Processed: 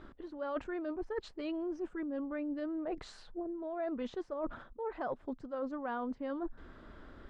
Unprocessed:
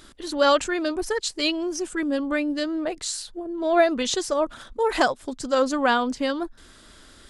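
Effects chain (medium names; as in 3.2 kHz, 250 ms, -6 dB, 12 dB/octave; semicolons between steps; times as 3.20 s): low-pass 1.3 kHz 12 dB/octave; reverse; compression 12:1, threshold -35 dBFS, peak gain reduction 21.5 dB; reverse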